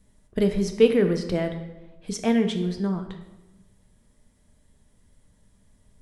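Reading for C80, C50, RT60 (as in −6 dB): 11.0 dB, 9.0 dB, 1.0 s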